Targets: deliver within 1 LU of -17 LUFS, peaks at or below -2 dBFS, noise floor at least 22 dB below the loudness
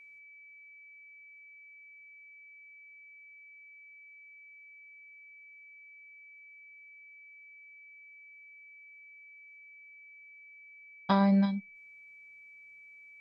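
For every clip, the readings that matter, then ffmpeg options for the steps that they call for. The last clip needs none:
steady tone 2300 Hz; tone level -51 dBFS; loudness -28.0 LUFS; peak -13.5 dBFS; loudness target -17.0 LUFS
-> -af "bandreject=f=2.3k:w=30"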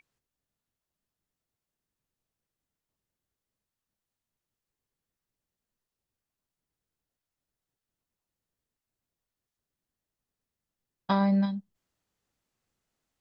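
steady tone none; loudness -27.0 LUFS; peak -13.5 dBFS; loudness target -17.0 LUFS
-> -af "volume=10dB"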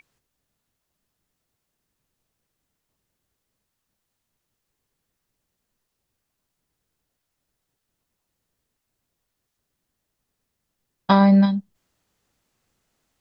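loudness -17.0 LUFS; peak -3.5 dBFS; noise floor -80 dBFS

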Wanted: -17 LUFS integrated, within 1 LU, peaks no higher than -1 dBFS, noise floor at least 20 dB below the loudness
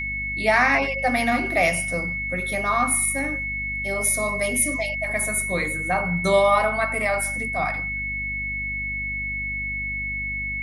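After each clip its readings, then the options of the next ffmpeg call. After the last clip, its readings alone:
hum 50 Hz; harmonics up to 250 Hz; hum level -33 dBFS; steady tone 2200 Hz; tone level -26 dBFS; loudness -22.5 LUFS; peak -6.5 dBFS; loudness target -17.0 LUFS
-> -af "bandreject=f=50:t=h:w=4,bandreject=f=100:t=h:w=4,bandreject=f=150:t=h:w=4,bandreject=f=200:t=h:w=4,bandreject=f=250:t=h:w=4"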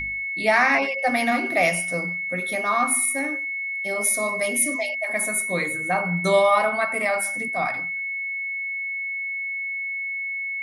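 hum none; steady tone 2200 Hz; tone level -26 dBFS
-> -af "bandreject=f=2.2k:w=30"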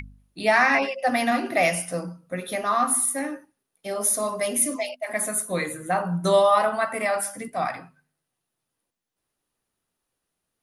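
steady tone none; loudness -23.5 LUFS; peak -8.0 dBFS; loudness target -17.0 LUFS
-> -af "volume=6.5dB"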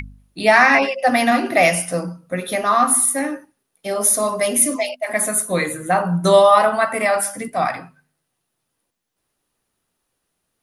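loudness -17.0 LUFS; peak -1.5 dBFS; noise floor -76 dBFS

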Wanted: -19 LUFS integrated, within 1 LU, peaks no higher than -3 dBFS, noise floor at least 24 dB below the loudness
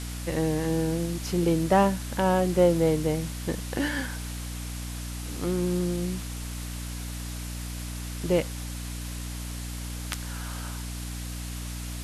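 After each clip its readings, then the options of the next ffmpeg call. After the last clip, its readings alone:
hum 60 Hz; harmonics up to 300 Hz; hum level -33 dBFS; noise floor -35 dBFS; noise floor target -53 dBFS; loudness -29.0 LUFS; peak -10.0 dBFS; loudness target -19.0 LUFS
-> -af "bandreject=f=60:t=h:w=6,bandreject=f=120:t=h:w=6,bandreject=f=180:t=h:w=6,bandreject=f=240:t=h:w=6,bandreject=f=300:t=h:w=6"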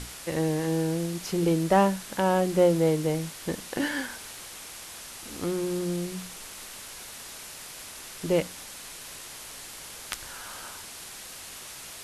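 hum none; noise floor -43 dBFS; noise floor target -54 dBFS
-> -af "afftdn=nr=11:nf=-43"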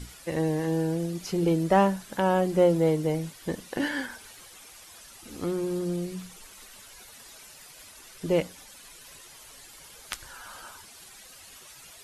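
noise floor -50 dBFS; noise floor target -52 dBFS
-> -af "afftdn=nr=6:nf=-50"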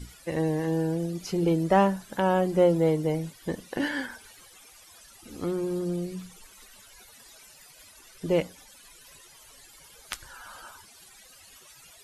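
noise floor -53 dBFS; loudness -27.5 LUFS; peak -9.5 dBFS; loudness target -19.0 LUFS
-> -af "volume=8.5dB,alimiter=limit=-3dB:level=0:latency=1"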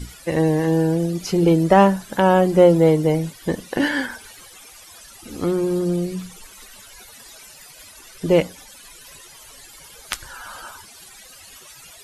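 loudness -19.0 LUFS; peak -3.0 dBFS; noise floor -45 dBFS

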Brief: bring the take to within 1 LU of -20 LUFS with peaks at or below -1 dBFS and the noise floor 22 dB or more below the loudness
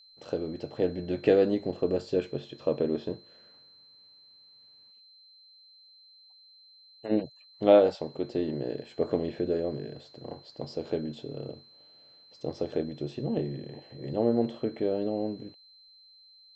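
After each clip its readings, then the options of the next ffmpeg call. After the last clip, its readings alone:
steady tone 4100 Hz; tone level -54 dBFS; loudness -29.5 LUFS; peak -7.5 dBFS; loudness target -20.0 LUFS
-> -af "bandreject=f=4.1k:w=30"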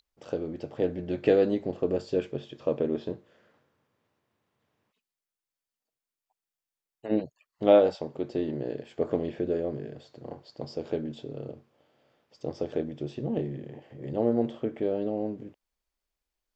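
steady tone none; loudness -29.5 LUFS; peak -7.5 dBFS; loudness target -20.0 LUFS
-> -af "volume=9.5dB,alimiter=limit=-1dB:level=0:latency=1"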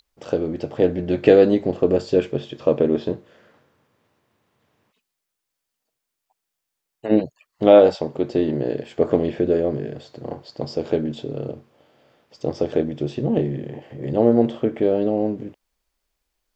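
loudness -20.5 LUFS; peak -1.0 dBFS; noise floor -81 dBFS

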